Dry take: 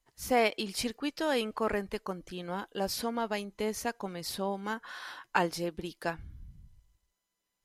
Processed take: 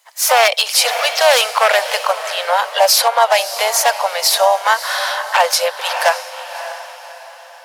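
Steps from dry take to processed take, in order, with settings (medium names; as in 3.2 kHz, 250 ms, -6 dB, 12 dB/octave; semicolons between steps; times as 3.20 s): one-sided wavefolder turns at -24 dBFS; steep high-pass 540 Hz 72 dB/octave; dynamic bell 1.5 kHz, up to -3 dB, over -45 dBFS, Q 1.1; harmony voices +3 st -10 dB; on a send: echo that smears into a reverb 592 ms, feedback 41%, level -13 dB; on the sum: loudness maximiser +25.5 dB; trim -1 dB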